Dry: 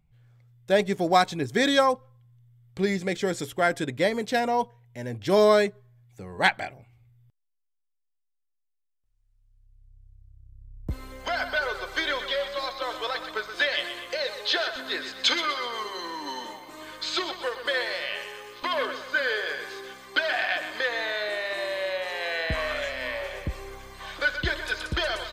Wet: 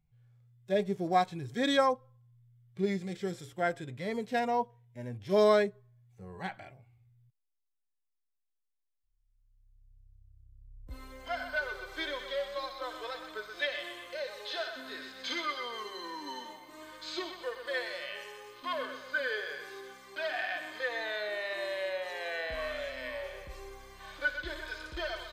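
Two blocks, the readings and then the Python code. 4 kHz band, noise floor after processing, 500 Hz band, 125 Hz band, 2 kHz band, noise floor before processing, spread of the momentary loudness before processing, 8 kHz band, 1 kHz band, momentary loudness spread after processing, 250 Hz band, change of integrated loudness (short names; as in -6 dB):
-10.5 dB, -81 dBFS, -6.0 dB, -7.5 dB, -8.5 dB, -76 dBFS, 14 LU, -11.5 dB, -6.5 dB, 16 LU, -6.0 dB, -7.5 dB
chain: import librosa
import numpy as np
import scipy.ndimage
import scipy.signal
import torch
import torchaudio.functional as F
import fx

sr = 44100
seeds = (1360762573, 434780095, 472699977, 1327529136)

y = fx.hpss(x, sr, part='percussive', gain_db=-18)
y = y * librosa.db_to_amplitude(-5.0)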